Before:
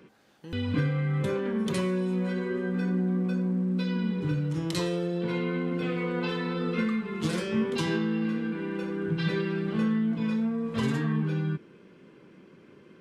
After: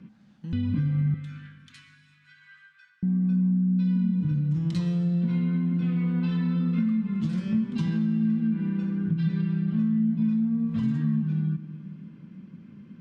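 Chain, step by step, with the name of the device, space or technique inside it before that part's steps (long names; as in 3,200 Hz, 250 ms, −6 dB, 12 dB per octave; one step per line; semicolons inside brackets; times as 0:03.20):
jukebox (low-pass filter 6,600 Hz 12 dB per octave; low shelf with overshoot 290 Hz +11 dB, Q 3; downward compressor 4 to 1, threshold −19 dBFS, peak gain reduction 11 dB)
0:01.14–0:03.03: elliptic high-pass filter 1,400 Hz, stop band 80 dB
comb and all-pass reverb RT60 2 s, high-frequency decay 0.85×, pre-delay 80 ms, DRR 12.5 dB
level −5 dB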